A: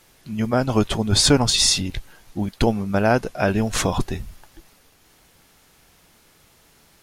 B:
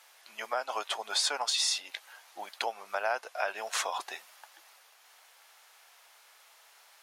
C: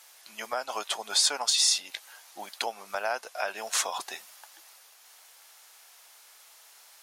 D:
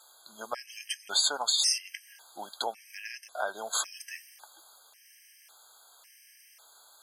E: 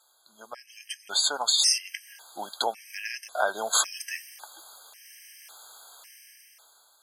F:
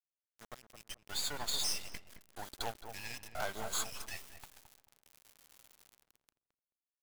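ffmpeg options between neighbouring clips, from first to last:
ffmpeg -i in.wav -af "highpass=frequency=680:width=0.5412,highpass=frequency=680:width=1.3066,highshelf=frequency=4800:gain=-4.5,acompressor=threshold=-33dB:ratio=2" out.wav
ffmpeg -i in.wav -af "bass=frequency=250:gain=14,treble=frequency=4000:gain=8" out.wav
ffmpeg -i in.wav -af "afftfilt=real='re*gt(sin(2*PI*0.91*pts/sr)*(1-2*mod(floor(b*sr/1024/1600),2)),0)':imag='im*gt(sin(2*PI*0.91*pts/sr)*(1-2*mod(floor(b*sr/1024/1600),2)),0)':win_size=1024:overlap=0.75" out.wav
ffmpeg -i in.wav -af "dynaudnorm=framelen=260:gausssize=9:maxgain=15.5dB,volume=-7dB" out.wav
ffmpeg -i in.wav -filter_complex "[0:a]acrusher=bits=4:dc=4:mix=0:aa=0.000001,asoftclip=type=tanh:threshold=-23.5dB,asplit=2[link_01][link_02];[link_02]adelay=217,lowpass=frequency=1100:poles=1,volume=-7.5dB,asplit=2[link_03][link_04];[link_04]adelay=217,lowpass=frequency=1100:poles=1,volume=0.25,asplit=2[link_05][link_06];[link_06]adelay=217,lowpass=frequency=1100:poles=1,volume=0.25[link_07];[link_01][link_03][link_05][link_07]amix=inputs=4:normalize=0,volume=-5dB" out.wav

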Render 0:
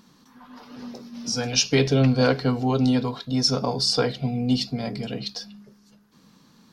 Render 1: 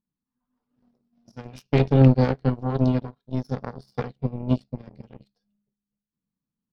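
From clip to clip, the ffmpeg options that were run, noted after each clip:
ffmpeg -i in.wav -af "aemphasis=mode=reproduction:type=riaa,aeval=exprs='0.891*(cos(1*acos(clip(val(0)/0.891,-1,1)))-cos(1*PI/2))+0.2*(cos(3*acos(clip(val(0)/0.891,-1,1)))-cos(3*PI/2))+0.0398*(cos(7*acos(clip(val(0)/0.891,-1,1)))-cos(7*PI/2))':channel_layout=same,volume=-2.5dB" out.wav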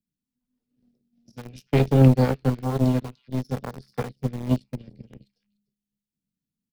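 ffmpeg -i in.wav -filter_complex "[0:a]acrossover=split=100|540|1900[link_01][link_02][link_03][link_04];[link_03]acrusher=bits=6:mix=0:aa=0.000001[link_05];[link_04]aecho=1:1:296:0.133[link_06];[link_01][link_02][link_05][link_06]amix=inputs=4:normalize=0" out.wav

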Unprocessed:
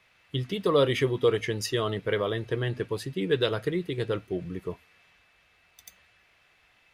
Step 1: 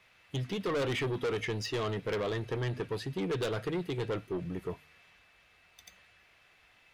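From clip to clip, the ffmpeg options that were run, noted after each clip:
ffmpeg -i in.wav -filter_complex "[0:a]acrossover=split=5500[link_01][link_02];[link_02]acompressor=threshold=-55dB:ratio=4:attack=1:release=60[link_03];[link_01][link_03]amix=inputs=2:normalize=0,asoftclip=type=tanh:threshold=-28.5dB,bandreject=frequency=74.96:width_type=h:width=4,bandreject=frequency=149.92:width_type=h:width=4" out.wav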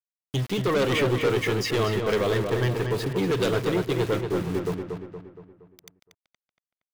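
ffmpeg -i in.wav -filter_complex "[0:a]aeval=exprs='val(0)*gte(abs(val(0)),0.00794)':channel_layout=same,asplit=2[link_01][link_02];[link_02]adelay=234,lowpass=frequency=3000:poles=1,volume=-5dB,asplit=2[link_03][link_04];[link_04]adelay=234,lowpass=frequency=3000:poles=1,volume=0.49,asplit=2[link_05][link_06];[link_06]adelay=234,lowpass=frequency=3000:poles=1,volume=0.49,asplit=2[link_07][link_08];[link_08]adelay=234,lowpass=frequency=3000:poles=1,volume=0.49,asplit=2[link_09][link_10];[link_10]adelay=234,lowpass=frequency=3000:poles=1,volume=0.49,asplit=2[link_11][link_12];[link_12]adelay=234,lowpass=frequency=3000:poles=1,volume=0.49[link_13];[link_03][link_05][link_07][link_09][link_11][link_13]amix=inputs=6:normalize=0[link_14];[link_01][link_14]amix=inputs=2:normalize=0,volume=8dB" out.wav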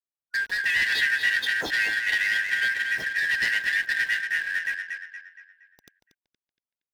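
ffmpeg -i in.wav -filter_complex "[0:a]afftfilt=real='real(if(lt(b,272),68*(eq(floor(b/68),0)*3+eq(floor(b/68),1)*0+eq(floor(b/68),2)*1+eq(floor(b/68),3)*2)+mod(b,68),b),0)':imag='imag(if(lt(b,272),68*(eq(floor(b/68),0)*3+eq(floor(b/68),1)*0+eq(floor(b/68),2)*1+eq(floor(b/68),3)*2)+mod(b,68),b),0)':win_size=2048:overlap=0.75,asplit=2[link_01][link_02];[link_02]adynamicsmooth=sensitivity=7.5:basefreq=1700,volume=2.5dB[link_03];[link_01][link_03]amix=inputs=2:normalize=0,volume=-8dB" out.wav

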